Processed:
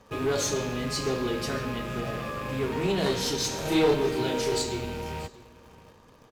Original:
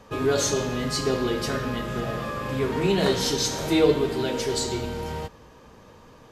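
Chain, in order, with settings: rattling part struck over -38 dBFS, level -31 dBFS; in parallel at -8.5 dB: bit-crush 7-bit; on the sum: one-sided clip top -17.5 dBFS; 3.62–4.62 doubler 32 ms -2.5 dB; echo 0.633 s -20.5 dB; gain -6 dB

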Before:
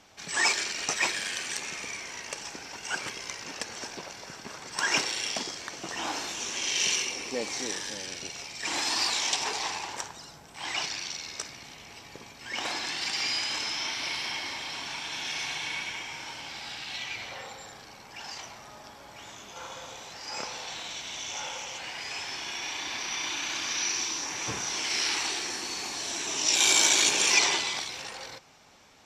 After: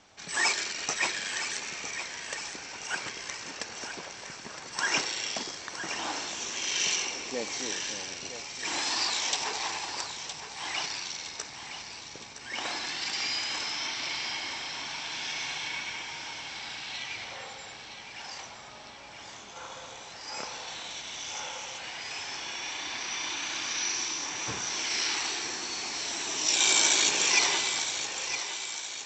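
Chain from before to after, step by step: Chebyshev low-pass 8100 Hz, order 10; on a send: thinning echo 0.964 s, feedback 56%, high-pass 370 Hz, level -9.5 dB; on the sum: gain -1 dB

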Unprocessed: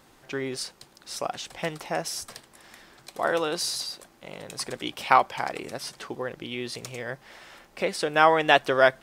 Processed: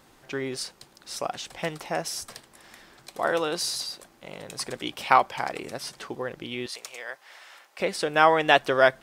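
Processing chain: 6.66–7.8 HPF 730 Hz 12 dB/oct

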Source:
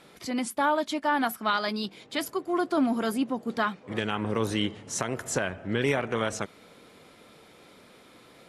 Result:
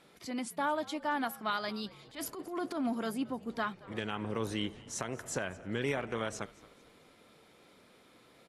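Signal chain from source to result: 1.91–2.9 transient shaper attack -11 dB, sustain +7 dB; frequency-shifting echo 0.223 s, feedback 39%, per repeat -73 Hz, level -21 dB; gain -7.5 dB

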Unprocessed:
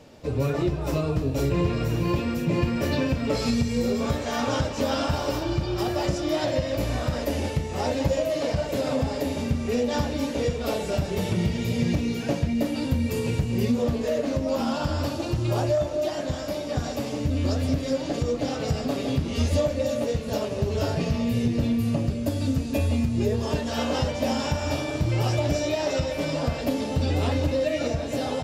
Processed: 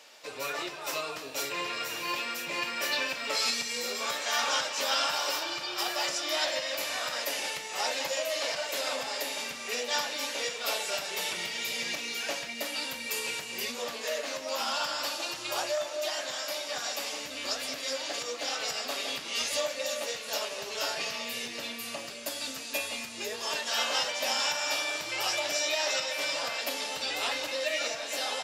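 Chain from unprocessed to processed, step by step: Bessel high-pass 1600 Hz, order 2; gain +6 dB

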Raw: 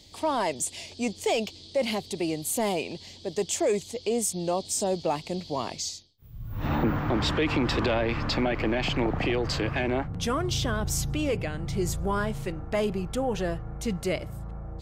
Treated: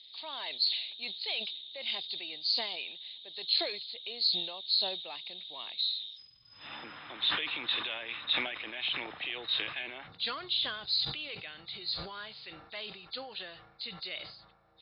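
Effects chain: nonlinear frequency compression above 3500 Hz 4:1; band-pass 3500 Hz, Q 1.9; sustainer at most 67 dB/s

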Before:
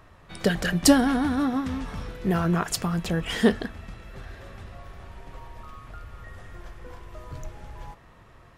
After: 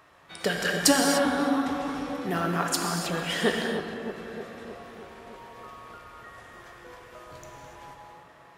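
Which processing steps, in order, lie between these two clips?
HPF 540 Hz 6 dB/oct; on a send: tape echo 0.309 s, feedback 76%, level -6 dB, low-pass 1200 Hz; on the sum: non-linear reverb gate 0.32 s flat, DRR 2 dB

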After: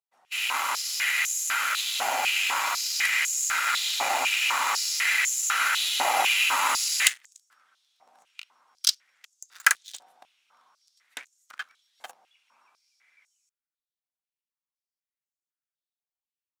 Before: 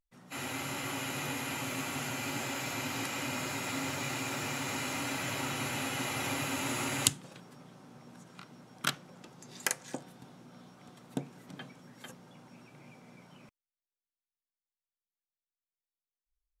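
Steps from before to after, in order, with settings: sample leveller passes 3; stepped high-pass 4 Hz 760–6800 Hz; gain -2.5 dB

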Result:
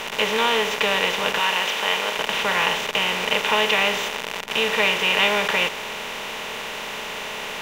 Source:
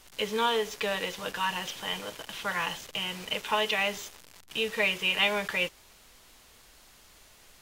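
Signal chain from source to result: per-bin compression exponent 0.4; 1.39–2.16 HPF 380 Hz 6 dB/oct; gain +2.5 dB

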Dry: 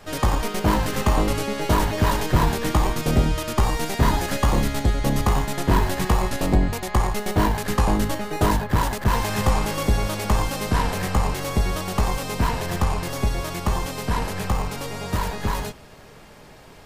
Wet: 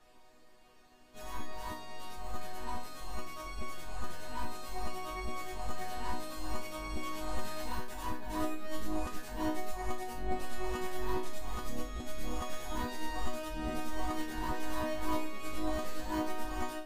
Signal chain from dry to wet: whole clip reversed; resonator bank B3 major, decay 0.38 s; gain +3 dB

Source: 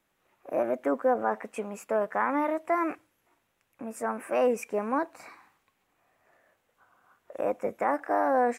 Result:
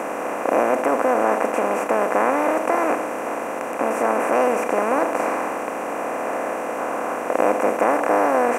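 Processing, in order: per-bin compression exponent 0.2

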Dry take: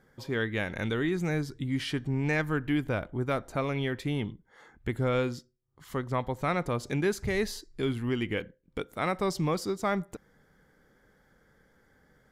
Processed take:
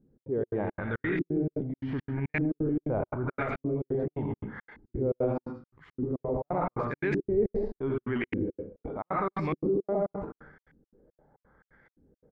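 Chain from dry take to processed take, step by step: echo 0.108 s -11 dB; on a send at -3.5 dB: reverb RT60 0.40 s, pre-delay 80 ms; on the sum: transient shaper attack -2 dB, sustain +11 dB; step gate "xx.xx.xx." 173 bpm -60 dB; LFO low-pass saw up 0.84 Hz 260–2400 Hz; dynamic EQ 370 Hz, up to +3 dB, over -35 dBFS, Q 5; in parallel at -1 dB: limiter -19 dBFS, peak gain reduction 9 dB; on the sum: gain -9 dB

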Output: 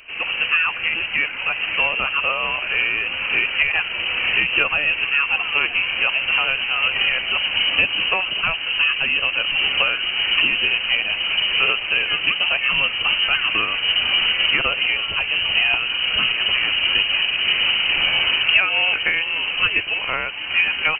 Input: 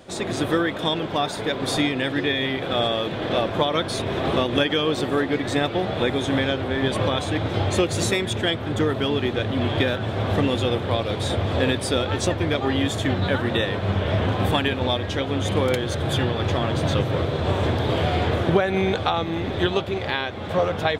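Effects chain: inverted band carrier 3000 Hz; gain +2.5 dB

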